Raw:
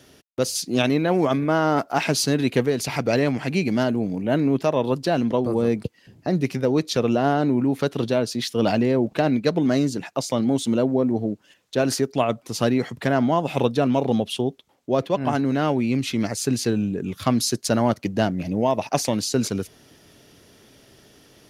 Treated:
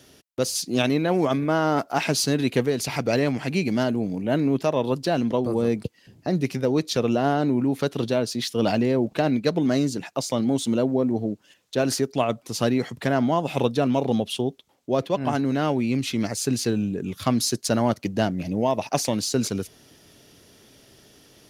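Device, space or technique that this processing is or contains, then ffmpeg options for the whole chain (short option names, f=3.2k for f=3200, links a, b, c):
exciter from parts: -filter_complex "[0:a]asplit=2[a][b];[b]highpass=2.4k,asoftclip=type=tanh:threshold=-31.5dB,volume=-8dB[c];[a][c]amix=inputs=2:normalize=0,volume=-1.5dB"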